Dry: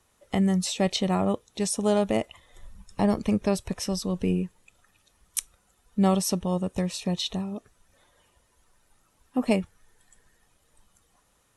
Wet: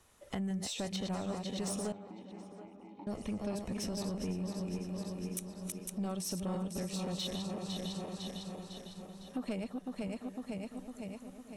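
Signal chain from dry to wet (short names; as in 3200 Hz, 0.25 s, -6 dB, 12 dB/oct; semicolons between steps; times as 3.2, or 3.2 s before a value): regenerating reverse delay 0.252 s, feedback 69%, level -7 dB; compressor 3:1, threshold -37 dBFS, peak gain reduction 16 dB; soft clip -30.5 dBFS, distortion -15 dB; 1.92–3.07 vowel filter u; on a send: tape echo 0.728 s, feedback 51%, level -10.5 dB, low-pass 1400 Hz; on the sum: gain +1 dB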